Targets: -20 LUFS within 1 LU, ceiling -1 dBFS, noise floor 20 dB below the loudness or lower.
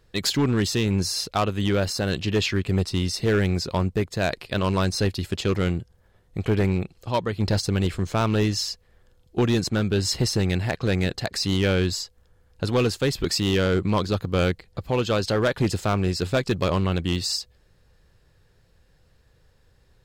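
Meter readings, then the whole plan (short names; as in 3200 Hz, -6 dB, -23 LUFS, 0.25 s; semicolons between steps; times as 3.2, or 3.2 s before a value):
clipped 1.7%; flat tops at -15.0 dBFS; loudness -24.0 LUFS; peak -15.0 dBFS; loudness target -20.0 LUFS
-> clip repair -15 dBFS; gain +4 dB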